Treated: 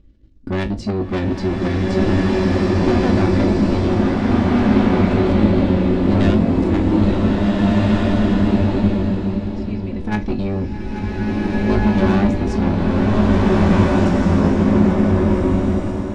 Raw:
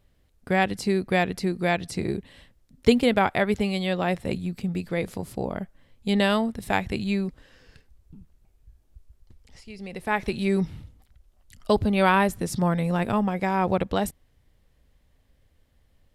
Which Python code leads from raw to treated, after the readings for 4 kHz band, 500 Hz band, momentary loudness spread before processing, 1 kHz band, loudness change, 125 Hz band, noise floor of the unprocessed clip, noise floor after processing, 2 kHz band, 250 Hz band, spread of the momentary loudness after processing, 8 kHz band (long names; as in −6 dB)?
+2.0 dB, +7.0 dB, 12 LU, +3.0 dB, +8.0 dB, +13.5 dB, −64 dBFS, −27 dBFS, +2.0 dB, +12.0 dB, 8 LU, can't be measured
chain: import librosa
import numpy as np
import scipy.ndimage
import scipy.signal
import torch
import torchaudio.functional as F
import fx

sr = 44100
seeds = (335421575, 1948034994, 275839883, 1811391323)

p1 = fx.octave_divider(x, sr, octaves=1, level_db=-1.0)
p2 = scipy.signal.sosfilt(scipy.signal.butter(4, 6300.0, 'lowpass', fs=sr, output='sos'), p1)
p3 = p2 + 0.56 * np.pad(p2, (int(3.5 * sr / 1000.0), 0))[:len(p2)]
p4 = fx.level_steps(p3, sr, step_db=10)
p5 = fx.low_shelf_res(p4, sr, hz=490.0, db=12.0, q=1.5)
p6 = 10.0 ** (-19.5 / 20.0) * np.tanh(p5 / 10.0 ** (-19.5 / 20.0))
p7 = fx.comb_fb(p6, sr, f0_hz=53.0, decay_s=0.21, harmonics='all', damping=0.0, mix_pct=80)
p8 = p7 + fx.echo_single(p7, sr, ms=837, db=-12.0, dry=0)
p9 = fx.rev_bloom(p8, sr, seeds[0], attack_ms=1780, drr_db=-6.0)
y = p9 * 10.0 ** (7.0 / 20.0)